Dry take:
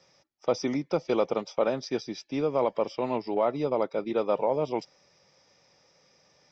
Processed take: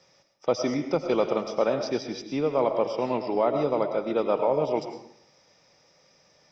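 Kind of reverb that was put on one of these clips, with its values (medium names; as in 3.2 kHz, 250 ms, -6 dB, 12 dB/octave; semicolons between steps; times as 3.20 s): algorithmic reverb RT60 0.68 s, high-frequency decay 0.7×, pre-delay 65 ms, DRR 6.5 dB; trim +1.5 dB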